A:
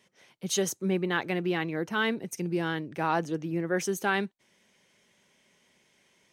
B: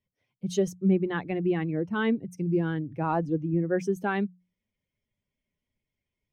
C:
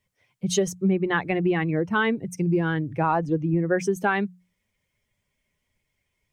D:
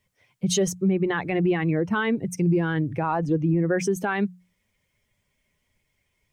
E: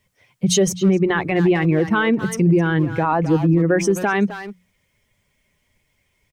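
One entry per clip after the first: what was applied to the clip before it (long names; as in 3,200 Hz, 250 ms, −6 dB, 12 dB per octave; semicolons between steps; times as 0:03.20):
spectral dynamics exaggerated over time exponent 1.5; spectral tilt −3.5 dB per octave; mains-hum notches 60/120/180 Hz
octave-band graphic EQ 250/1,000/2,000/8,000 Hz −5/+3/+4/+5 dB; downward compressor 3 to 1, threshold −28 dBFS, peak gain reduction 6.5 dB; level +8.5 dB
brickwall limiter −18 dBFS, peak gain reduction 8.5 dB; level +3.5 dB
far-end echo of a speakerphone 260 ms, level −9 dB; level +6 dB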